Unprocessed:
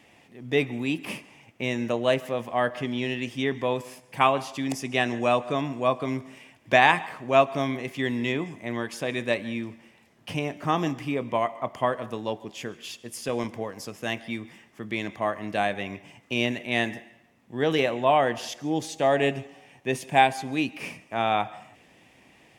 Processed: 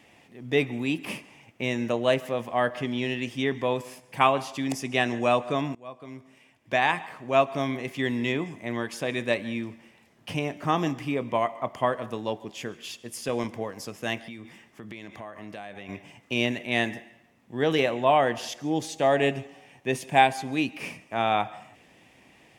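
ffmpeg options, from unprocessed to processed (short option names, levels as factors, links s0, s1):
-filter_complex "[0:a]asettb=1/sr,asplit=3[s0][s1][s2];[s0]atrim=end=14.284[s3];[s1]atrim=start=14.28:end=15.89,asetpts=PTS-STARTPTS,afade=t=in:d=0.004:c=qsin,afade=t=out:st=1.606:d=0.004:c=qsin,acompressor=threshold=0.0141:ratio=5:attack=3.2:release=140:knee=1:detection=peak[s4];[s2]atrim=start=15.886[s5];[s3][s4]acrossfade=d=0.004:c1=hsin:c2=qsin[s6];[s6][s5]acrossfade=d=0.004:c1=qsin:c2=hsin,asplit=2[s7][s8];[s7]atrim=end=5.75,asetpts=PTS-STARTPTS,afade=t=out:st=5.746:d=0.004:c=hsin:silence=0.0707946[s9];[s8]atrim=start=5.75,asetpts=PTS-STARTPTS,afade=t=in:d=2.15:silence=0.0707946[s10];[s9][s10]concat=n=2:v=0:a=1"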